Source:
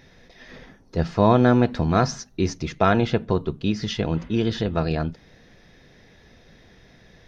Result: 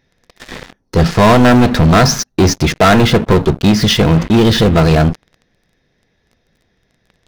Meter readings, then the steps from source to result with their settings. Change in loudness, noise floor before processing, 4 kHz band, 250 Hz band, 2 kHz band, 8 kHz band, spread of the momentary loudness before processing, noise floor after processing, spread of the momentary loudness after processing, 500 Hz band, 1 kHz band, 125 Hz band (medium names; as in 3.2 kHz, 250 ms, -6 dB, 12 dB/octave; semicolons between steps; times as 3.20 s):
+11.5 dB, -54 dBFS, +16.5 dB, +11.0 dB, +13.5 dB, no reading, 10 LU, -63 dBFS, 5 LU, +10.0 dB, +10.5 dB, +12.0 dB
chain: waveshaping leveller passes 5